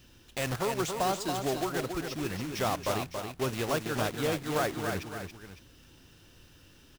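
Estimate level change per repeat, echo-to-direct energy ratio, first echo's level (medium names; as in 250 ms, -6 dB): -7.0 dB, -5.0 dB, -6.0 dB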